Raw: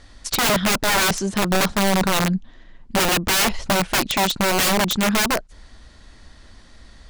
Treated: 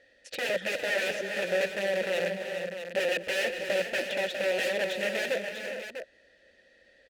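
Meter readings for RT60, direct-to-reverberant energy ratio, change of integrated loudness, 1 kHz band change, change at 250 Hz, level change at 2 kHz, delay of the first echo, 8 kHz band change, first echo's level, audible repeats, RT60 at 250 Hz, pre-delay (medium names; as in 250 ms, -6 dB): no reverb, no reverb, -10.5 dB, -19.0 dB, -19.0 dB, -7.0 dB, 234 ms, -20.0 dB, -16.5 dB, 5, no reverb, no reverb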